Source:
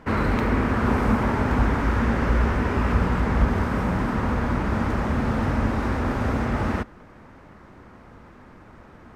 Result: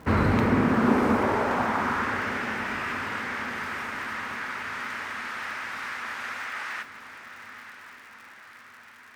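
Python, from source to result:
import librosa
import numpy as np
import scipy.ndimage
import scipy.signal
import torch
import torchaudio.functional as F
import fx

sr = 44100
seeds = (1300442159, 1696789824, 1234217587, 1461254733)

y = fx.dmg_crackle(x, sr, seeds[0], per_s=140.0, level_db=-42.0)
y = fx.filter_sweep_highpass(y, sr, from_hz=61.0, to_hz=1800.0, start_s=0.02, end_s=2.34, q=1.3)
y = fx.echo_diffused(y, sr, ms=981, feedback_pct=56, wet_db=-11.5)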